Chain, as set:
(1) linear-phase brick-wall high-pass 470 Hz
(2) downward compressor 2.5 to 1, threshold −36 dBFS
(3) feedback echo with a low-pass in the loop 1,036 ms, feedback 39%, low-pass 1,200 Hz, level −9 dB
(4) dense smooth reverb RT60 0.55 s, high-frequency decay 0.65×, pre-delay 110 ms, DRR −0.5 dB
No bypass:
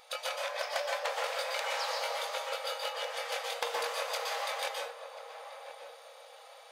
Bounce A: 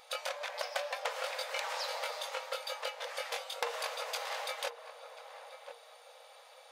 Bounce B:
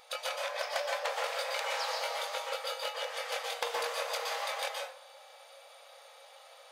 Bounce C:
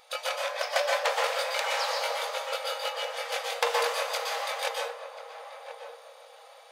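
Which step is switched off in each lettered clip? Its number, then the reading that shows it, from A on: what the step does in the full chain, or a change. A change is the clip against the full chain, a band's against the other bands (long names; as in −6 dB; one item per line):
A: 4, change in crest factor +3.5 dB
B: 3, change in momentary loudness spread +5 LU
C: 2, change in momentary loudness spread +1 LU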